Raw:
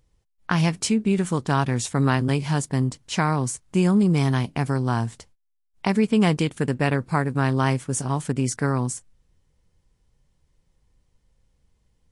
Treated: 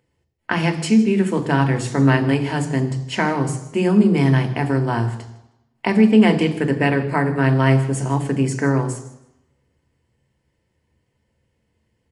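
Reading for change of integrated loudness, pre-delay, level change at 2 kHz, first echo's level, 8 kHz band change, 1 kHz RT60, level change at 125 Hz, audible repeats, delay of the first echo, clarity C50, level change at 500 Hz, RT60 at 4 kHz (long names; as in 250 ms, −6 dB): +4.5 dB, 3 ms, +5.5 dB, −20.0 dB, −3.5 dB, 0.90 s, +3.5 dB, 2, 157 ms, 11.5 dB, +6.0 dB, 0.90 s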